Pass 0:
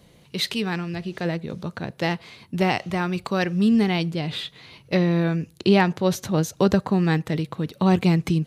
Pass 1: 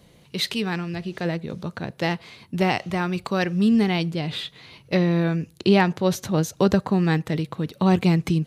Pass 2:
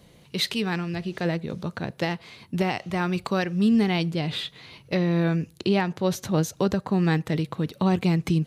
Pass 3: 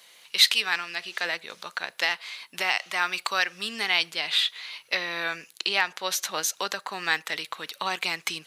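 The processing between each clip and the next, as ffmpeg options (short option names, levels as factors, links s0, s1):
-af anull
-af "alimiter=limit=0.211:level=0:latency=1:release=375"
-af "highpass=1400,volume=2.66"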